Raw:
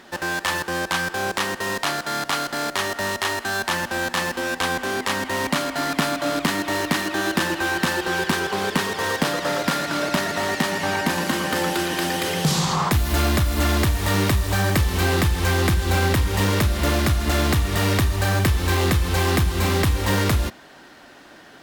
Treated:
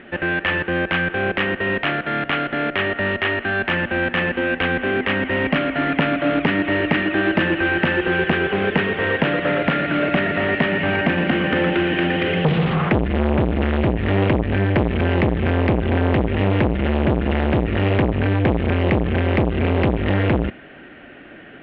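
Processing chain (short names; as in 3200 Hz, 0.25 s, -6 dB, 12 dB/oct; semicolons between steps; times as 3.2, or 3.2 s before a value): steep low-pass 2900 Hz 48 dB/oct; bell 970 Hz -14 dB 0.76 oct; core saturation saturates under 530 Hz; gain +8 dB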